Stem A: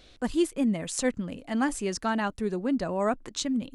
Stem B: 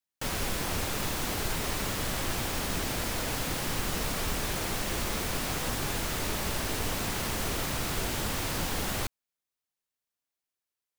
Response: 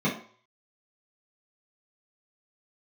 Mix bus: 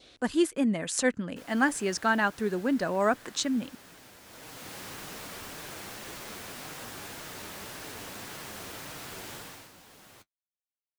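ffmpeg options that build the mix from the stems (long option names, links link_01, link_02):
-filter_complex "[0:a]volume=1.5dB[link_01];[1:a]flanger=delay=6.3:depth=4.6:regen=-38:speed=1.8:shape=sinusoidal,adelay=1150,volume=-5dB,afade=type=in:start_time=4.24:duration=0.52:silence=0.298538,afade=type=out:start_time=9.34:duration=0.37:silence=0.251189[link_02];[link_01][link_02]amix=inputs=2:normalize=0,highpass=frequency=200:poles=1,adynamicequalizer=threshold=0.00282:dfrequency=1600:dqfactor=3.3:tfrequency=1600:tqfactor=3.3:attack=5:release=100:ratio=0.375:range=3.5:mode=boostabove:tftype=bell"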